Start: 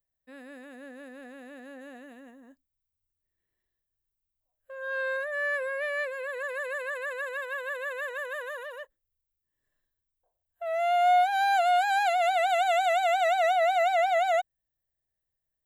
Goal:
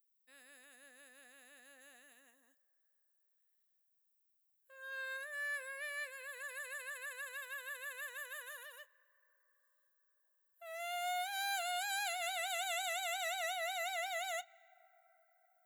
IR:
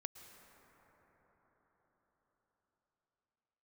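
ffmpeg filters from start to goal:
-filter_complex "[0:a]aderivative,asplit=2[a][b];[b]highpass=590,lowpass=5.5k[c];[1:a]atrim=start_sample=2205,adelay=34[d];[c][d]afir=irnorm=-1:irlink=0,volume=-12dB[e];[a][e]amix=inputs=2:normalize=0,volume=1.5dB"

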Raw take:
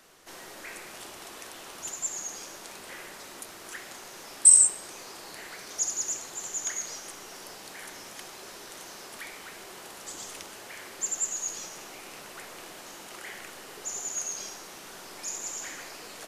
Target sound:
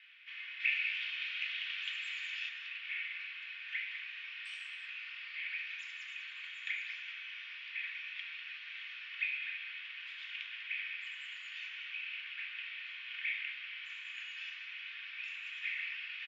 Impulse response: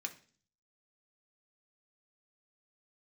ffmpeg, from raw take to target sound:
-filter_complex "[0:a]asettb=1/sr,asplit=3[a][b][c];[a]atrim=end=0.604[d];[b]atrim=start=0.6:end=2.49,asetpts=PTS-STARTPTS,afade=t=in:d=0.004:c=qsin,afade=t=out:st=1.886:d=0.004:c=qsin,highshelf=f=2k:g=9.5[e];[c]atrim=start=2.486[f];[d][e]acrossfade=d=0.004:c1=hsin:c2=qsin[g];[g][f]acrossfade=d=0.004:c1=qsin:c2=hsin,acrossover=split=2200[h][i];[h]acrusher=bits=3:mix=0:aa=0.5[j];[j][i]amix=inputs=2:normalize=0,highpass=f=200:t=q:w=0.5412,highpass=f=200:t=q:w=1.307,lowpass=f=2.6k:t=q:w=0.5176,lowpass=f=2.6k:t=q:w=0.7071,lowpass=f=2.6k:t=q:w=1.932,afreqshift=210,aecho=1:1:34.99|195.3:0.251|0.316[k];[1:a]atrim=start_sample=2205[l];[k][l]afir=irnorm=-1:irlink=0,volume=14dB"

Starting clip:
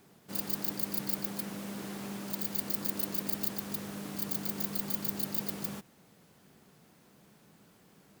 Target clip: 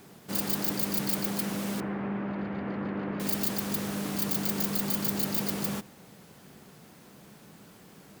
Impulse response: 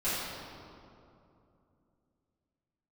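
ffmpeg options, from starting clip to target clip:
-filter_complex "[0:a]asettb=1/sr,asplit=3[a][b][c];[a]atrim=end=1.804[d];[b]atrim=start=1.8:end=3.2,asetpts=PTS-STARTPTS,afade=t=in:d=0.004:c=qsin,afade=t=out:st=1.396:d=0.004:c=qsin,lowpass=f=2.1k:w=0.5412,lowpass=f=2.1k:w=1.3066[e];[c]atrim=start=3.196[f];[d][e]acrossfade=d=0.004:c1=hsin:c2=qsin[g];[g][f]acrossfade=d=0.004:c1=qsin:c2=hsin,asoftclip=type=tanh:threshold=-29.5dB,asplit=2[h][i];[1:a]atrim=start_sample=2205[j];[i][j]afir=irnorm=-1:irlink=0,volume=-32dB[k];[h][k]amix=inputs=2:normalize=0,volume=8.5dB"

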